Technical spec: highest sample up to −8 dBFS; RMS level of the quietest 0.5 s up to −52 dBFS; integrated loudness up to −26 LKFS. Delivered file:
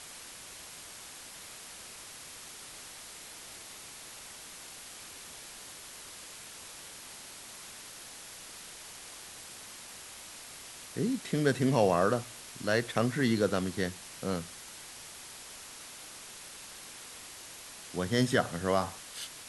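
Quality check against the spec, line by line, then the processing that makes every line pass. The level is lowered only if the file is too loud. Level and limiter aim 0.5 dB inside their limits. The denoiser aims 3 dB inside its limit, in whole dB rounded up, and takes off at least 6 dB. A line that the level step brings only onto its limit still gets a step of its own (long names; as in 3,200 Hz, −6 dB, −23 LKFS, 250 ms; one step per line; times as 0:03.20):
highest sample −11.5 dBFS: in spec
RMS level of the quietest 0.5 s −48 dBFS: out of spec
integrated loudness −35.5 LKFS: in spec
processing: broadband denoise 7 dB, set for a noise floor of −48 dBFS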